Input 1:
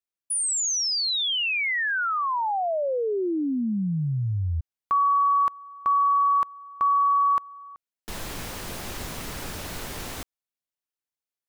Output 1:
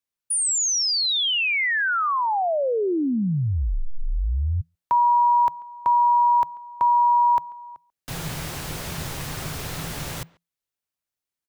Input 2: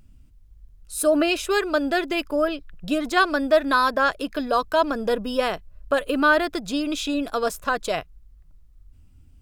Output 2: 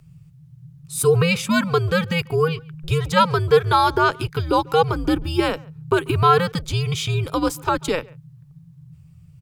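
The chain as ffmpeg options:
-filter_complex "[0:a]asplit=2[a][b];[b]adelay=140,highpass=300,lowpass=3.4k,asoftclip=type=hard:threshold=-15dB,volume=-24dB[c];[a][c]amix=inputs=2:normalize=0,afreqshift=-170,volume=3dB"

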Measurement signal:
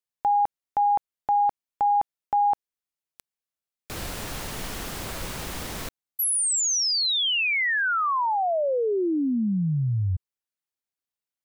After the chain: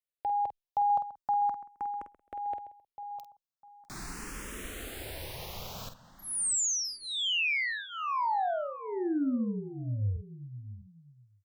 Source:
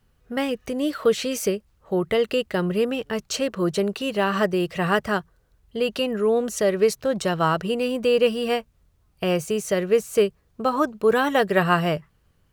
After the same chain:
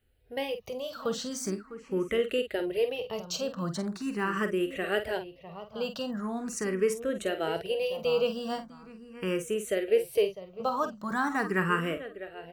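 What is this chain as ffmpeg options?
-filter_complex "[0:a]asplit=2[a][b];[b]adelay=48,volume=-9.5dB[c];[a][c]amix=inputs=2:normalize=0,asplit=2[d][e];[e]adelay=652,lowpass=f=2.8k:p=1,volume=-14dB,asplit=2[f][g];[g]adelay=652,lowpass=f=2.8k:p=1,volume=0.22[h];[f][h]amix=inputs=2:normalize=0[i];[d][i]amix=inputs=2:normalize=0,asplit=2[j][k];[k]afreqshift=0.41[l];[j][l]amix=inputs=2:normalize=1,volume=-5dB"

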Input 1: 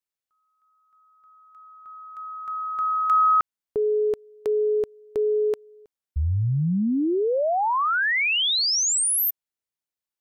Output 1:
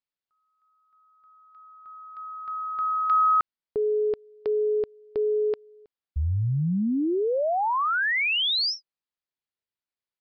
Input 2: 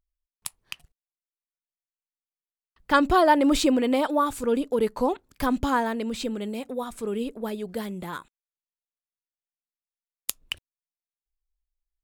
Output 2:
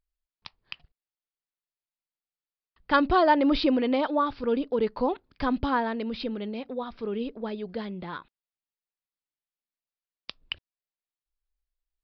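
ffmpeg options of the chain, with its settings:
-af "aresample=11025,aresample=44100,volume=-2dB"

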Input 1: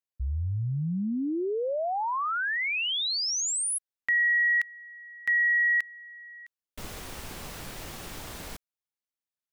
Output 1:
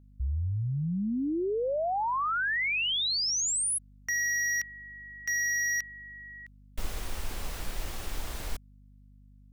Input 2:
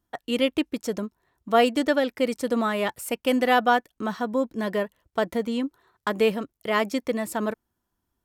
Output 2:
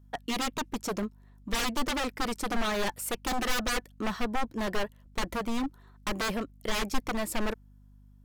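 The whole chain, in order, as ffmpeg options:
-af "aeval=exprs='0.0596*(abs(mod(val(0)/0.0596+3,4)-2)-1)':c=same,asubboost=boost=5:cutoff=58,aeval=exprs='val(0)+0.002*(sin(2*PI*50*n/s)+sin(2*PI*2*50*n/s)/2+sin(2*PI*3*50*n/s)/3+sin(2*PI*4*50*n/s)/4+sin(2*PI*5*50*n/s)/5)':c=same"

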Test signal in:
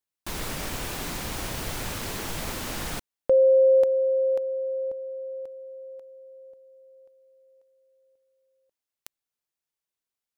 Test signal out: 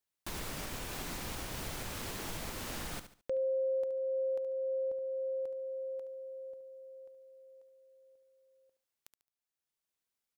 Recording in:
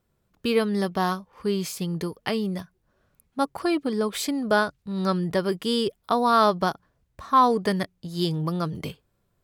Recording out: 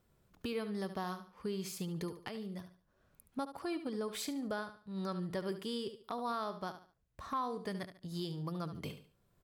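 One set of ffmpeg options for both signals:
-af "aecho=1:1:72|144|216:0.251|0.0678|0.0183,acompressor=threshold=-32dB:ratio=6:attack=0.19:release=723:knee=6:detection=rms"

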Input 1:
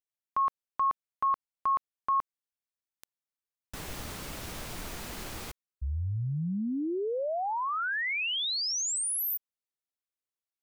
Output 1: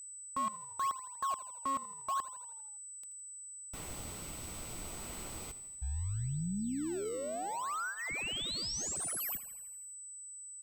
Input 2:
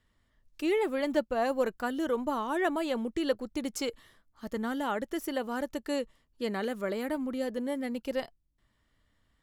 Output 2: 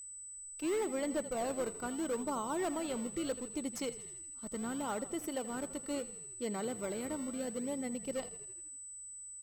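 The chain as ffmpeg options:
-filter_complex "[0:a]bandreject=f=1.7k:w=5.8,asplit=2[a][b];[b]acrusher=samples=30:mix=1:aa=0.000001:lfo=1:lforange=48:lforate=0.73,volume=-9.5dB[c];[a][c]amix=inputs=2:normalize=0,asplit=8[d][e][f][g][h][i][j][k];[e]adelay=81,afreqshift=-36,volume=-15.5dB[l];[f]adelay=162,afreqshift=-72,volume=-19.5dB[m];[g]adelay=243,afreqshift=-108,volume=-23.5dB[n];[h]adelay=324,afreqshift=-144,volume=-27.5dB[o];[i]adelay=405,afreqshift=-180,volume=-31.6dB[p];[j]adelay=486,afreqshift=-216,volume=-35.6dB[q];[k]adelay=567,afreqshift=-252,volume=-39.6dB[r];[d][l][m][n][o][p][q][r]amix=inputs=8:normalize=0,asoftclip=type=hard:threshold=-22dB,aeval=exprs='val(0)+0.0126*sin(2*PI*8000*n/s)':c=same,volume=-7.5dB"

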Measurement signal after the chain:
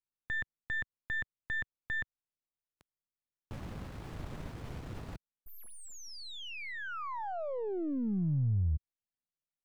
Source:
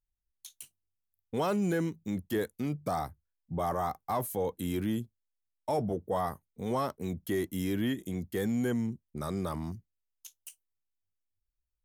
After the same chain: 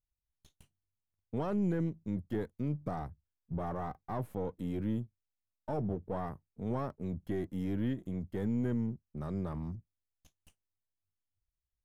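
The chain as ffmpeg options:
-af "aeval=exprs='if(lt(val(0),0),0.447*val(0),val(0))':c=same,lowpass=f=1.5k:p=1,equalizer=f=100:w=0.45:g=9,volume=-5dB"

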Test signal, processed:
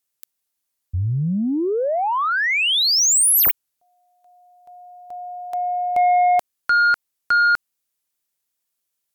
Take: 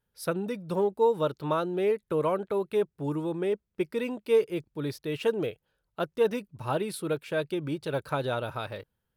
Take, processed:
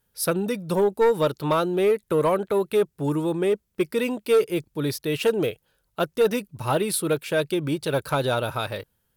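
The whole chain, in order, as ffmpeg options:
-af "aemphasis=mode=production:type=cd,aeval=exprs='0.266*sin(PI/2*1.78*val(0)/0.266)':c=same,volume=-2dB"

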